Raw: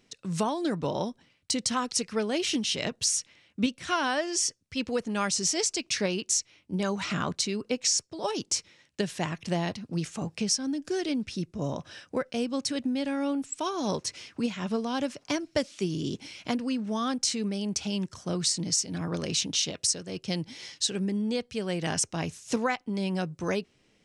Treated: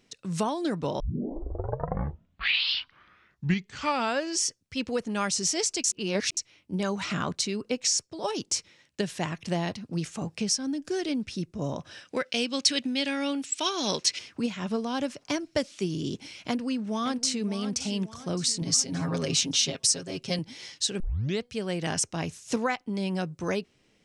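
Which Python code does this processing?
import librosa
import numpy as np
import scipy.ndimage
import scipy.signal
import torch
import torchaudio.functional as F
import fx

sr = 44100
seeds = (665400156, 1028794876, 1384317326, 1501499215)

y = fx.weighting(x, sr, curve='D', at=(12.05, 14.19))
y = fx.echo_throw(y, sr, start_s=16.36, length_s=1.11, ms=570, feedback_pct=45, wet_db=-11.5)
y = fx.comb(y, sr, ms=7.4, depth=0.96, at=(18.61, 20.39))
y = fx.edit(y, sr, fx.tape_start(start_s=1.0, length_s=3.46),
    fx.reverse_span(start_s=5.84, length_s=0.53),
    fx.tape_start(start_s=21.0, length_s=0.42), tone=tone)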